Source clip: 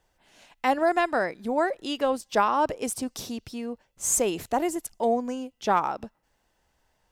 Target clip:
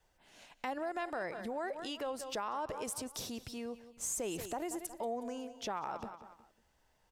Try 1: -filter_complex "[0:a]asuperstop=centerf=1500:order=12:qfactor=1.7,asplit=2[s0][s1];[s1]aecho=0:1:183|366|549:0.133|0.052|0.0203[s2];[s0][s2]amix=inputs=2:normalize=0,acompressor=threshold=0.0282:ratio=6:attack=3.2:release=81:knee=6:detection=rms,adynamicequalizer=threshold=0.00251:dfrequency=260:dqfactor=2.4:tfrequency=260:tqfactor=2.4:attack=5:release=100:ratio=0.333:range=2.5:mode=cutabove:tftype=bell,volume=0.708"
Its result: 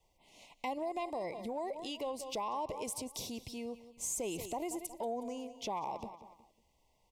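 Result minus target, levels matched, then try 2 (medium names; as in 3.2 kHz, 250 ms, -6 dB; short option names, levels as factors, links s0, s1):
2 kHz band -5.5 dB
-filter_complex "[0:a]asplit=2[s0][s1];[s1]aecho=0:1:183|366|549:0.133|0.052|0.0203[s2];[s0][s2]amix=inputs=2:normalize=0,acompressor=threshold=0.0282:ratio=6:attack=3.2:release=81:knee=6:detection=rms,adynamicequalizer=threshold=0.00251:dfrequency=260:dqfactor=2.4:tfrequency=260:tqfactor=2.4:attack=5:release=100:ratio=0.333:range=2.5:mode=cutabove:tftype=bell,volume=0.708"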